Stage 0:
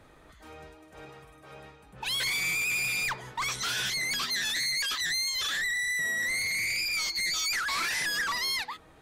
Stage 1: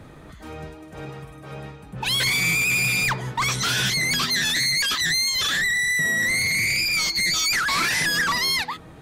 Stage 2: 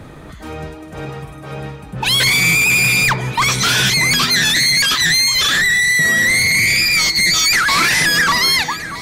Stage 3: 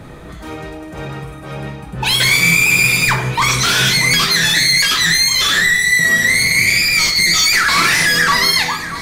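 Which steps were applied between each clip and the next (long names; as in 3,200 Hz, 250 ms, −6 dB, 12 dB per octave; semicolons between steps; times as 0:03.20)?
parametric band 150 Hz +10.5 dB 2.1 octaves; level +7.5 dB
delay that swaps between a low-pass and a high-pass 634 ms, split 2,000 Hz, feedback 68%, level −13 dB; level +8 dB
soft clipping −7 dBFS, distortion −25 dB; dense smooth reverb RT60 0.6 s, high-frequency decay 0.75×, DRR 3 dB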